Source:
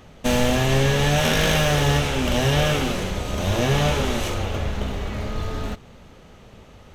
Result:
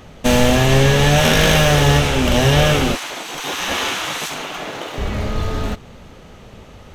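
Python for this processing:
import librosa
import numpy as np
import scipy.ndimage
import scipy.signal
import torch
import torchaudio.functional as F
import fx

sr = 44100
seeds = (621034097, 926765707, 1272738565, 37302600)

y = fx.spec_gate(x, sr, threshold_db=-15, keep='weak', at=(2.95, 4.98))
y = y * librosa.db_to_amplitude(6.0)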